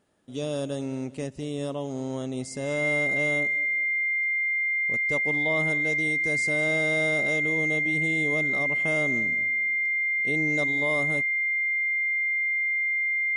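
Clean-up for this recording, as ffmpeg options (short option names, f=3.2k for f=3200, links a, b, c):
-af "bandreject=f=2.1k:w=30"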